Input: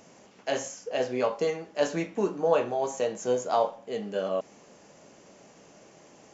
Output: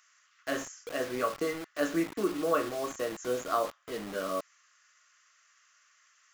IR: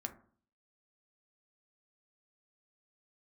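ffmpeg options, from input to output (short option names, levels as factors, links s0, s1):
-filter_complex "[0:a]superequalizer=6b=2.82:9b=0.447:10b=3.55:11b=2.24,acrossover=split=1400[s0][s1];[s0]acrusher=bits=5:mix=0:aa=0.000001[s2];[s2][s1]amix=inputs=2:normalize=0,volume=0.501"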